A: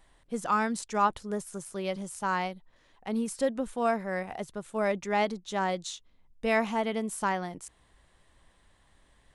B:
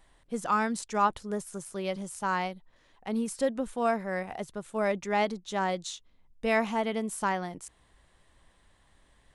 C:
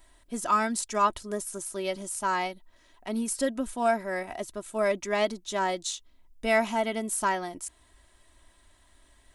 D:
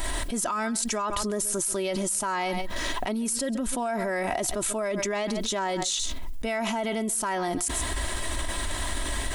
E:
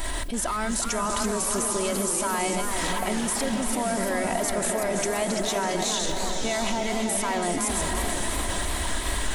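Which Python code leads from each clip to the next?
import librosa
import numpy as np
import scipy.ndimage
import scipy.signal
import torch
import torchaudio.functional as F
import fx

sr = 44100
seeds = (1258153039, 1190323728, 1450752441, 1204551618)

y1 = x
y2 = fx.high_shelf(y1, sr, hz=6100.0, db=9.5)
y2 = y2 + 0.6 * np.pad(y2, (int(3.1 * sr / 1000.0), 0))[:len(y2)]
y3 = y2 + 10.0 ** (-23.0 / 20.0) * np.pad(y2, (int(134 * sr / 1000.0), 0))[:len(y2)]
y3 = fx.env_flatten(y3, sr, amount_pct=100)
y3 = F.gain(torch.from_numpy(y3), -8.5).numpy()
y4 = fx.echo_diffused(y3, sr, ms=596, feedback_pct=46, wet_db=-6.0)
y4 = fx.echo_warbled(y4, sr, ms=337, feedback_pct=56, rate_hz=2.8, cents=184, wet_db=-7.0)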